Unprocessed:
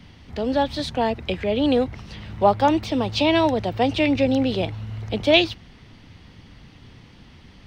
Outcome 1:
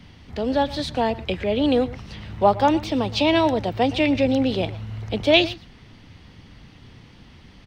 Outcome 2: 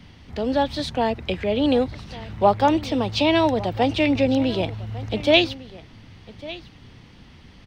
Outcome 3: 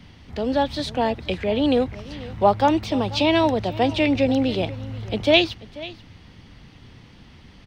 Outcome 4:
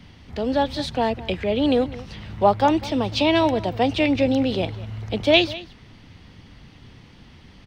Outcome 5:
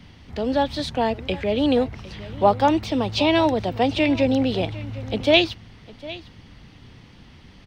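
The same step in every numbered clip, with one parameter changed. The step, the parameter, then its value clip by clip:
single-tap delay, delay time: 117, 1,152, 487, 200, 755 milliseconds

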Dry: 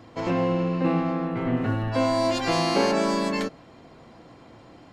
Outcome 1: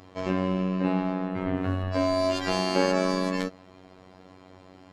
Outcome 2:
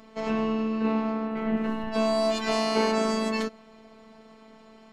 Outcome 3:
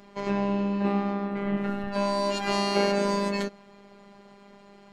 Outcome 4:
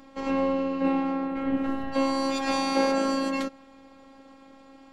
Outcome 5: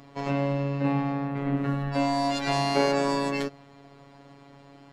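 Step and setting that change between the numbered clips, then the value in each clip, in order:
phases set to zero, frequency: 93, 220, 200, 270, 140 Hertz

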